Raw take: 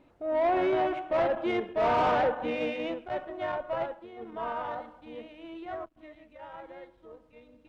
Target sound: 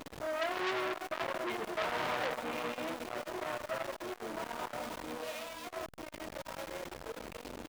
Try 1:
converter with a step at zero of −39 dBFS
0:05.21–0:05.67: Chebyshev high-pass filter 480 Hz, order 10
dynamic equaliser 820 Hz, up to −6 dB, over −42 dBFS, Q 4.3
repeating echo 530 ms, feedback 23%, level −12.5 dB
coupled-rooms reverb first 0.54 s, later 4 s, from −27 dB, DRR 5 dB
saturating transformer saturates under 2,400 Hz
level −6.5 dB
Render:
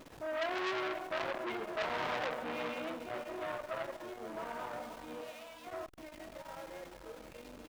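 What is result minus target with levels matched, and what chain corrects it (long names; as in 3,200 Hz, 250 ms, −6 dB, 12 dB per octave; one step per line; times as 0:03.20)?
converter with a step at zero: distortion −9 dB
converter with a step at zero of −28.5 dBFS
0:05.21–0:05.67: Chebyshev high-pass filter 480 Hz, order 10
dynamic equaliser 820 Hz, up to −6 dB, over −42 dBFS, Q 4.3
repeating echo 530 ms, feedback 23%, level −12.5 dB
coupled-rooms reverb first 0.54 s, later 4 s, from −27 dB, DRR 5 dB
saturating transformer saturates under 2,400 Hz
level −6.5 dB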